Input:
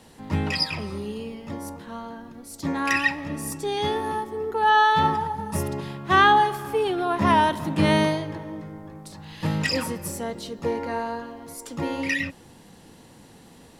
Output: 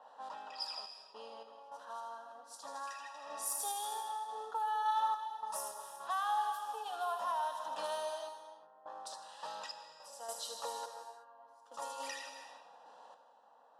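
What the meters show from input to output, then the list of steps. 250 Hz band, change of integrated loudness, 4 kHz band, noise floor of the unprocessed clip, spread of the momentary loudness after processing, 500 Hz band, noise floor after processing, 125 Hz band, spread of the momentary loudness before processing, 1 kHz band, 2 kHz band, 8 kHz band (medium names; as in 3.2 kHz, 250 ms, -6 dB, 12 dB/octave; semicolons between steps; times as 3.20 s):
under -35 dB, -16.0 dB, -15.5 dB, -50 dBFS, 18 LU, -18.0 dB, -62 dBFS, under -40 dB, 19 LU, -13.5 dB, -23.5 dB, -5.5 dB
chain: high-pass 500 Hz 24 dB/octave; band-stop 4.4 kHz, Q 23; compression 3:1, threshold -40 dBFS, peak gain reduction 19.5 dB; static phaser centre 900 Hz, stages 4; feedback echo behind a high-pass 79 ms, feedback 77%, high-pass 4.2 kHz, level -3.5 dB; random-step tremolo 3.5 Hz, depth 100%; level-controlled noise filter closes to 1.6 kHz, open at -39.5 dBFS; gated-style reverb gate 400 ms flat, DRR 6.5 dB; tape noise reduction on one side only decoder only; trim +4.5 dB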